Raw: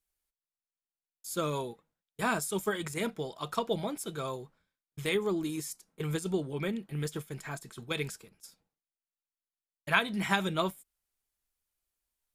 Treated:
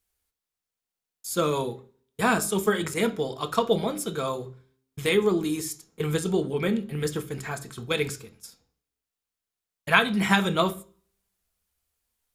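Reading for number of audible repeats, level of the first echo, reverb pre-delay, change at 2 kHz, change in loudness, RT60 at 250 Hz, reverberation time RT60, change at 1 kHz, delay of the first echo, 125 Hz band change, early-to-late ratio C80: no echo audible, no echo audible, 3 ms, +6.5 dB, +7.5 dB, 0.45 s, 0.45 s, +7.0 dB, no echo audible, +6.0 dB, 22.0 dB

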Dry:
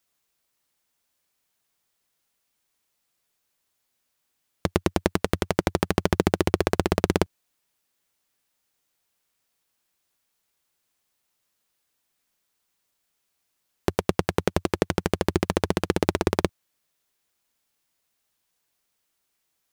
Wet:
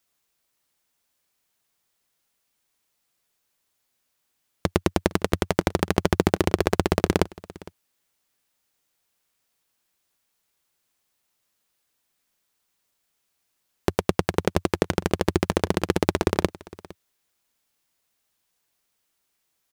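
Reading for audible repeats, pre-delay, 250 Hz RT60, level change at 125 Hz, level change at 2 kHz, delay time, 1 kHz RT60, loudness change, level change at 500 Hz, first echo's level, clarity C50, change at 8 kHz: 1, no reverb audible, no reverb audible, +1.0 dB, +1.0 dB, 459 ms, no reverb audible, +1.0 dB, +1.0 dB, −21.0 dB, no reverb audible, +1.0 dB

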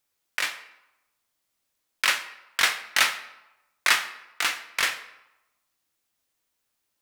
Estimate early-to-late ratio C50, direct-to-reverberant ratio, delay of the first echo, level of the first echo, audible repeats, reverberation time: 12.5 dB, 9.0 dB, no echo audible, no echo audible, no echo audible, 0.95 s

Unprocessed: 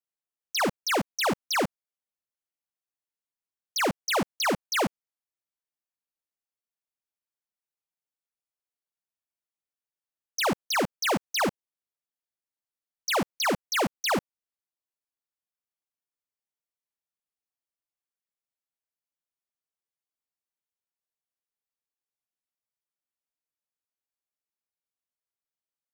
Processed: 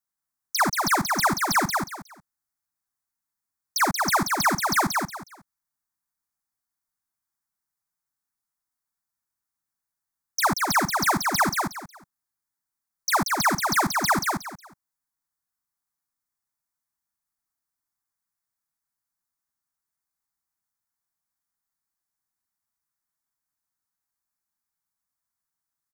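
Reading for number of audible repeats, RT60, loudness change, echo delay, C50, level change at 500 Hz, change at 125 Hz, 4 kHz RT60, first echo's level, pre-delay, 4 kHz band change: 3, no reverb audible, +4.5 dB, 182 ms, no reverb audible, −2.5 dB, +5.5 dB, no reverb audible, −4.0 dB, no reverb audible, +1.5 dB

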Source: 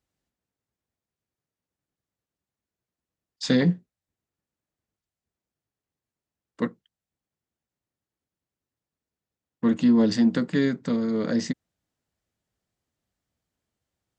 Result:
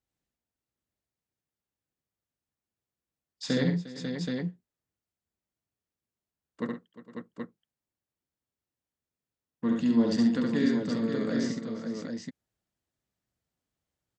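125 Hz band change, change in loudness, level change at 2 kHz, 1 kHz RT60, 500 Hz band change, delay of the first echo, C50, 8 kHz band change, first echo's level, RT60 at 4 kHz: −3.5 dB, −5.5 dB, −4.0 dB, no reverb audible, −3.5 dB, 69 ms, no reverb audible, can't be measured, −3.0 dB, no reverb audible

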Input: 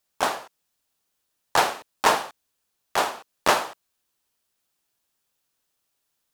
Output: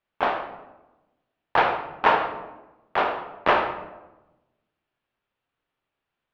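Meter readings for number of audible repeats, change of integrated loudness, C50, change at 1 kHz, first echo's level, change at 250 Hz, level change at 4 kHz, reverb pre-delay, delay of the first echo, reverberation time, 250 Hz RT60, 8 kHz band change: no echo audible, 0.0 dB, 7.5 dB, +1.5 dB, no echo audible, +1.5 dB, −6.0 dB, 9 ms, no echo audible, 1.1 s, 1.3 s, below −25 dB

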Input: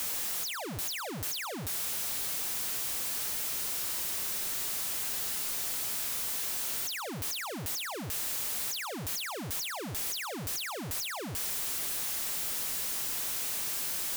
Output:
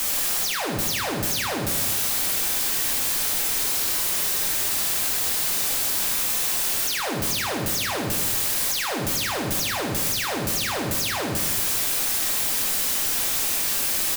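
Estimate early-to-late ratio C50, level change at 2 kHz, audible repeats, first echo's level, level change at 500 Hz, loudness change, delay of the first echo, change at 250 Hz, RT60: 3.5 dB, +11.0 dB, 1, −8.0 dB, +12.0 dB, +10.0 dB, 78 ms, +12.0 dB, 1.1 s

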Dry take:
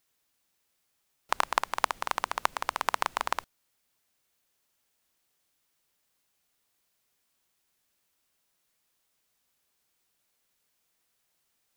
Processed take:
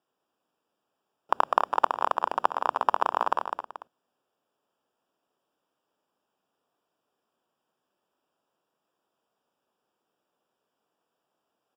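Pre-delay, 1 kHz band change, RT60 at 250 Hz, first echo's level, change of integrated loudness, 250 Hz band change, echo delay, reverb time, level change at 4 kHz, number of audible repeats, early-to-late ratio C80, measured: no reverb audible, +5.5 dB, no reverb audible, −6.0 dB, +4.0 dB, +6.0 dB, 203 ms, no reverb audible, −6.0 dB, 2, no reverb audible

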